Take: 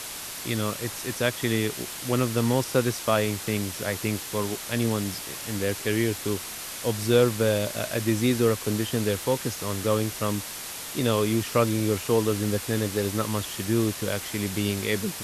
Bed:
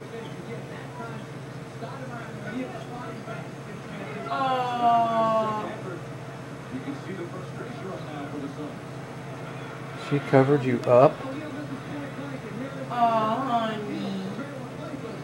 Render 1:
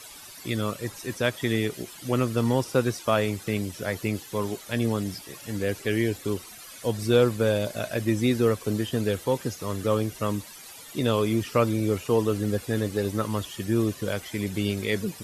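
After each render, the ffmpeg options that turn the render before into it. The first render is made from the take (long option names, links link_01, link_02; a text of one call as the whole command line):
ffmpeg -i in.wav -af "afftdn=noise_reduction=14:noise_floor=-37" out.wav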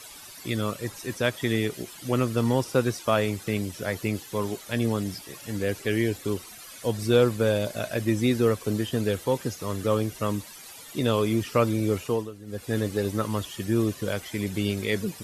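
ffmpeg -i in.wav -filter_complex "[0:a]asplit=3[link_01][link_02][link_03];[link_01]atrim=end=12.31,asetpts=PTS-STARTPTS,afade=type=out:start_time=12.03:duration=0.28:silence=0.149624[link_04];[link_02]atrim=start=12.31:end=12.46,asetpts=PTS-STARTPTS,volume=-16.5dB[link_05];[link_03]atrim=start=12.46,asetpts=PTS-STARTPTS,afade=type=in:duration=0.28:silence=0.149624[link_06];[link_04][link_05][link_06]concat=n=3:v=0:a=1" out.wav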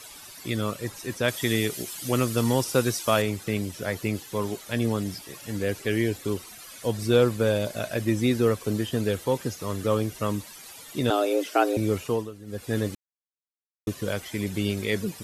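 ffmpeg -i in.wav -filter_complex "[0:a]asettb=1/sr,asplit=3[link_01][link_02][link_03];[link_01]atrim=end=1.284[link_04];[link_02]atrim=start=1.28:end=3.22,asetpts=PTS-STARTPTS,afade=type=in:duration=0.004:curve=qsin,afade=type=out:start_time=1.936:duration=0.004:curve=qsin,highshelf=frequency=3700:gain=9.5[link_05];[link_03]atrim=start=3.216[link_06];[link_04][link_05]acrossfade=duration=0.004:curve1=hsin:curve2=qsin[link_07];[link_07][link_06]acrossfade=duration=0.004:curve1=qsin:curve2=hsin,asettb=1/sr,asplit=3[link_08][link_09][link_10];[link_08]atrim=end=11.104[link_11];[link_09]atrim=start=11.1:end=11.77,asetpts=PTS-STARTPTS,afade=type=in:duration=0.004:curve=qsin,afade=type=out:start_time=0.666:duration=0.004:curve=qsin,afreqshift=190[link_12];[link_10]atrim=start=11.766[link_13];[link_11][link_12]acrossfade=duration=0.004:curve1=hsin:curve2=qsin[link_14];[link_14][link_13]acrossfade=duration=0.004:curve1=qsin:curve2=hsin,asplit=3[link_15][link_16][link_17];[link_15]atrim=end=12.95,asetpts=PTS-STARTPTS,afade=type=out:start_time=12.946:duration=0.004:curve=hsin[link_18];[link_16]atrim=start=12.95:end=13.87,asetpts=PTS-STARTPTS,volume=0[link_19];[link_17]atrim=start=13.87,asetpts=PTS-STARTPTS,afade=type=in:duration=0.004:curve=hsin[link_20];[link_18][link_19][link_20]concat=n=3:v=0:a=1" out.wav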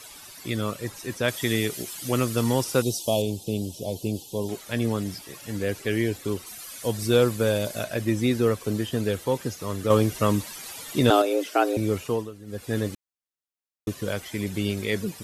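ffmpeg -i in.wav -filter_complex "[0:a]asettb=1/sr,asplit=3[link_01][link_02][link_03];[link_01]atrim=end=2.824[link_04];[link_02]atrim=start=2.82:end=4.49,asetpts=PTS-STARTPTS,afade=type=in:duration=0.004:curve=qsin,afade=type=out:start_time=1.666:duration=0.004:curve=qsin,asuperstop=centerf=1600:order=8:qfactor=0.78[link_05];[link_03]atrim=start=4.486[link_06];[link_04][link_05]acrossfade=duration=0.004:curve1=hsin:curve2=qsin[link_07];[link_07][link_06]acrossfade=duration=0.004:curve1=qsin:curve2=hsin,asettb=1/sr,asplit=3[link_08][link_09][link_10];[link_08]atrim=end=6.464[link_11];[link_09]atrim=start=6.46:end=7.84,asetpts=PTS-STARTPTS,afade=type=in:duration=0.004:curve=qsin,afade=type=out:start_time=1.376:duration=0.004:curve=qsin,highshelf=frequency=5200:gain=6.5[link_12];[link_10]atrim=start=7.836[link_13];[link_11][link_12]acrossfade=duration=0.004:curve1=hsin:curve2=qsin[link_14];[link_14][link_13]acrossfade=duration=0.004:curve1=qsin:curve2=hsin,asettb=1/sr,asplit=3[link_15][link_16][link_17];[link_15]atrim=end=9.904[link_18];[link_16]atrim=start=9.9:end=11.22,asetpts=PTS-STARTPTS,afade=type=in:duration=0.004:curve=qsin,afade=type=out:start_time=1.316:duration=0.004:curve=qsin,acontrast=40[link_19];[link_17]atrim=start=11.216[link_20];[link_18][link_19]acrossfade=duration=0.004:curve1=hsin:curve2=qsin[link_21];[link_21][link_20]acrossfade=duration=0.004:curve1=qsin:curve2=hsin" out.wav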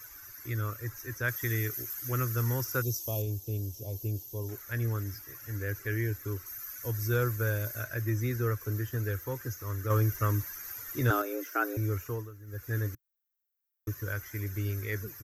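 ffmpeg -i in.wav -af "firequalizer=gain_entry='entry(120,0);entry(170,-23);entry(300,-9);entry(710,-17);entry(1500,1);entry(3000,-20);entry(4200,-18);entry(6100,-2);entry(9000,-21);entry(14000,13)':delay=0.05:min_phase=1" out.wav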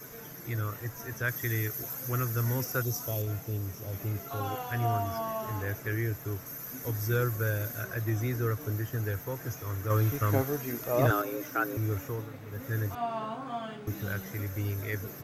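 ffmpeg -i in.wav -i bed.wav -filter_complex "[1:a]volume=-11.5dB[link_01];[0:a][link_01]amix=inputs=2:normalize=0" out.wav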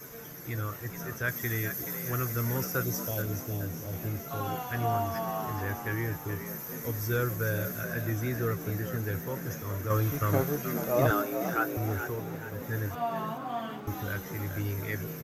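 ffmpeg -i in.wav -filter_complex "[0:a]asplit=2[link_01][link_02];[link_02]adelay=13,volume=-12dB[link_03];[link_01][link_03]amix=inputs=2:normalize=0,asplit=6[link_04][link_05][link_06][link_07][link_08][link_09];[link_05]adelay=427,afreqshift=60,volume=-9dB[link_10];[link_06]adelay=854,afreqshift=120,volume=-15.9dB[link_11];[link_07]adelay=1281,afreqshift=180,volume=-22.9dB[link_12];[link_08]adelay=1708,afreqshift=240,volume=-29.8dB[link_13];[link_09]adelay=2135,afreqshift=300,volume=-36.7dB[link_14];[link_04][link_10][link_11][link_12][link_13][link_14]amix=inputs=6:normalize=0" out.wav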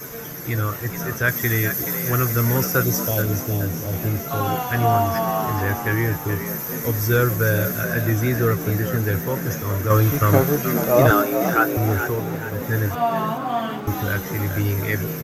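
ffmpeg -i in.wav -af "volume=11dB,alimiter=limit=-3dB:level=0:latency=1" out.wav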